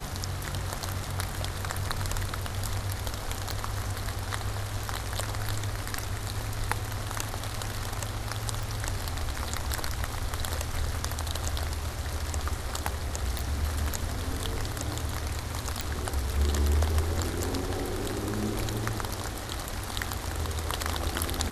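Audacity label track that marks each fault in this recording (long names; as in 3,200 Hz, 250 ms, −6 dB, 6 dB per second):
3.510000	3.510000	click
8.630000	8.630000	click
13.390000	13.390000	click
15.810000	15.810000	click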